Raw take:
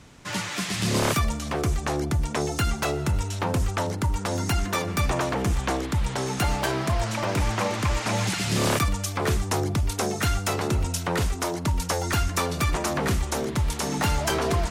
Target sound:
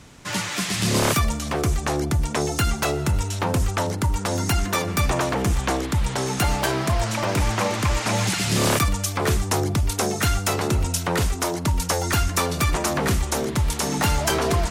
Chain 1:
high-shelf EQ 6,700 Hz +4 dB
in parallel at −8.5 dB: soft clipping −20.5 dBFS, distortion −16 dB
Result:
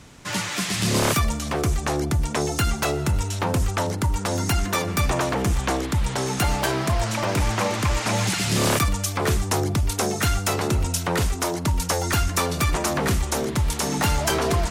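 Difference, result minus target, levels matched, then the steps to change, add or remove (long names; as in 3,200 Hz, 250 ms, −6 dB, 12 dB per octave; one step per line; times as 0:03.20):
soft clipping: distortion +15 dB
change: soft clipping −11.5 dBFS, distortion −31 dB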